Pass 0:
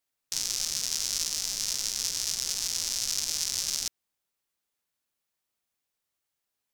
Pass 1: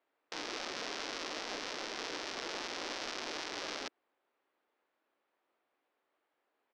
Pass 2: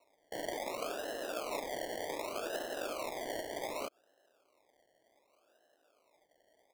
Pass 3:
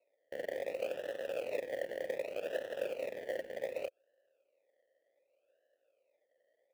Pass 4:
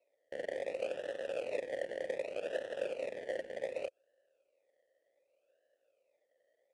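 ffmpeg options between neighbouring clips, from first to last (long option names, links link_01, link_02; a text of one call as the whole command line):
ffmpeg -i in.wav -filter_complex "[0:a]acrossover=split=220 3900:gain=0.141 1 0.178[link_01][link_02][link_03];[link_01][link_02][link_03]amix=inputs=3:normalize=0,alimiter=level_in=0.5dB:limit=-24dB:level=0:latency=1:release=49,volume=-0.5dB,firequalizer=gain_entry='entry(170,0);entry(300,11);entry(2800,-1);entry(11000,-23)':delay=0.05:min_phase=1,volume=4.5dB" out.wav
ffmpeg -i in.wav -af "alimiter=level_in=9dB:limit=-24dB:level=0:latency=1:release=82,volume=-9dB,lowpass=frequency=630:width_type=q:width=4.3,acrusher=samples=27:mix=1:aa=0.000001:lfo=1:lforange=16.2:lforate=0.66,volume=6dB" out.wav
ffmpeg -i in.wav -filter_complex "[0:a]aeval=exprs='0.0473*(cos(1*acos(clip(val(0)/0.0473,-1,1)))-cos(1*PI/2))+0.00944*(cos(7*acos(clip(val(0)/0.0473,-1,1)))-cos(7*PI/2))+0.00668*(cos(8*acos(clip(val(0)/0.0473,-1,1)))-cos(8*PI/2))':channel_layout=same,asplit=3[link_01][link_02][link_03];[link_01]bandpass=frequency=530:width_type=q:width=8,volume=0dB[link_04];[link_02]bandpass=frequency=1840:width_type=q:width=8,volume=-6dB[link_05];[link_03]bandpass=frequency=2480:width_type=q:width=8,volume=-9dB[link_06];[link_04][link_05][link_06]amix=inputs=3:normalize=0,acrusher=bits=6:mode=log:mix=0:aa=0.000001,volume=10.5dB" out.wav
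ffmpeg -i in.wav -af "aresample=22050,aresample=44100" out.wav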